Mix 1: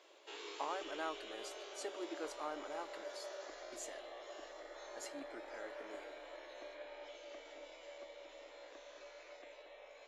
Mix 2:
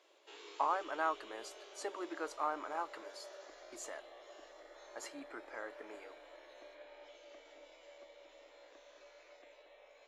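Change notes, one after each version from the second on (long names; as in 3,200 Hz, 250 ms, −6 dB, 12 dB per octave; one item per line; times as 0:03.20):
speech: add parametric band 1,100 Hz +10 dB 1.5 octaves
background −4.5 dB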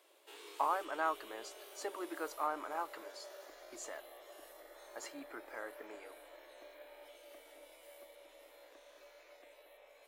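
background: remove linear-phase brick-wall low-pass 7,500 Hz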